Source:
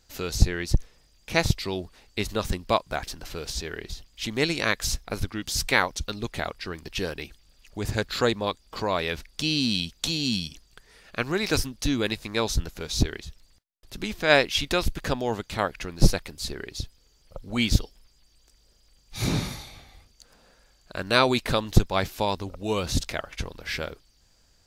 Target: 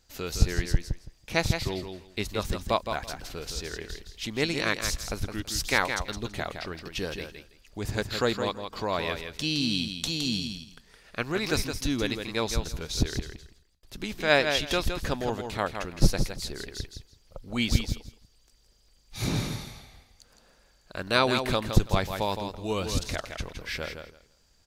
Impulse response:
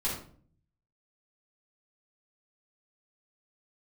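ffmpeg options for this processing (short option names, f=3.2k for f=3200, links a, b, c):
-af "aecho=1:1:165|330|495:0.447|0.0804|0.0145,volume=-3dB"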